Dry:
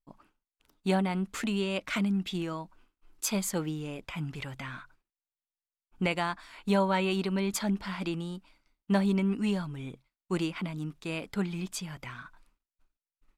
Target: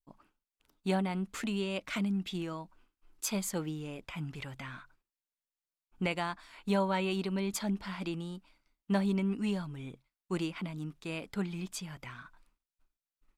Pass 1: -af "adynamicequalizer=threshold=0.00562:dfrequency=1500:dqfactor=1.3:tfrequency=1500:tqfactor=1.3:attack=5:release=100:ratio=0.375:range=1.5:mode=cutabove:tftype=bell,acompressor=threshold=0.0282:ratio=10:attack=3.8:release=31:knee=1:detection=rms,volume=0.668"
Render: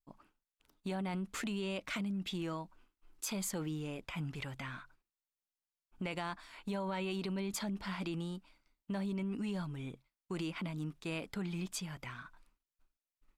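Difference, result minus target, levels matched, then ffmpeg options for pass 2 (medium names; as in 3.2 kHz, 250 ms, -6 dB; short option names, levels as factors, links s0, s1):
compression: peak gain reduction +11 dB
-af "adynamicequalizer=threshold=0.00562:dfrequency=1500:dqfactor=1.3:tfrequency=1500:tqfactor=1.3:attack=5:release=100:ratio=0.375:range=1.5:mode=cutabove:tftype=bell,volume=0.668"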